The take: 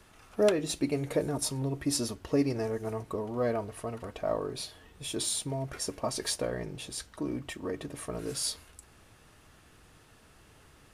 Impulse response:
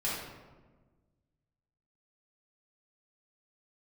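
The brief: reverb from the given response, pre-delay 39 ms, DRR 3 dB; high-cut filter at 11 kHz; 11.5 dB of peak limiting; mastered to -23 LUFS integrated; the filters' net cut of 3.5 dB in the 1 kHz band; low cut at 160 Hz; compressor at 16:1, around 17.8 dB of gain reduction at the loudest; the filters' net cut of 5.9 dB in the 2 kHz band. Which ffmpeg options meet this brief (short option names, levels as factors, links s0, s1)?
-filter_complex "[0:a]highpass=160,lowpass=11000,equalizer=f=1000:t=o:g=-3.5,equalizer=f=2000:t=o:g=-6.5,acompressor=threshold=0.01:ratio=16,alimiter=level_in=5.96:limit=0.0631:level=0:latency=1,volume=0.168,asplit=2[s0][s1];[1:a]atrim=start_sample=2205,adelay=39[s2];[s1][s2]afir=irnorm=-1:irlink=0,volume=0.335[s3];[s0][s3]amix=inputs=2:normalize=0,volume=16.8"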